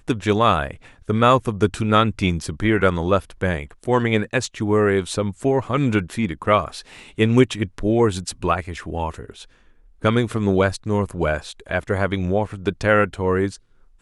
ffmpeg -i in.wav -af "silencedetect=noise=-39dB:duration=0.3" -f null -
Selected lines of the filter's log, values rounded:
silence_start: 9.44
silence_end: 10.02 | silence_duration: 0.58
silence_start: 13.56
silence_end: 14.01 | silence_duration: 0.45